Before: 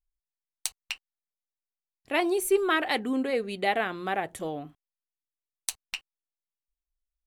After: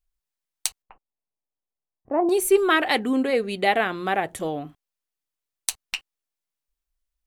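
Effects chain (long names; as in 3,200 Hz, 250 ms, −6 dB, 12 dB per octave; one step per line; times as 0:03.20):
0:00.82–0:02.29: low-pass filter 1,000 Hz 24 dB per octave
level +5.5 dB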